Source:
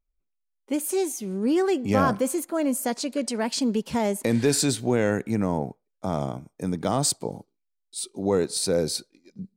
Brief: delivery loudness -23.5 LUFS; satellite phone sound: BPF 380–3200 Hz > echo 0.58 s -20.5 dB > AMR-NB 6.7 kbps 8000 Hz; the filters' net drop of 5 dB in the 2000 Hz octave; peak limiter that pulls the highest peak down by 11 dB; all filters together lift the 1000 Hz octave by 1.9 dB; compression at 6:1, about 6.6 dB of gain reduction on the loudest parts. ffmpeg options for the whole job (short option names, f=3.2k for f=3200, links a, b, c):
-af "equalizer=f=1k:t=o:g=4.5,equalizer=f=2k:t=o:g=-8,acompressor=threshold=-23dB:ratio=6,alimiter=limit=-24dB:level=0:latency=1,highpass=380,lowpass=3.2k,aecho=1:1:580:0.0944,volume=15.5dB" -ar 8000 -c:a libopencore_amrnb -b:a 6700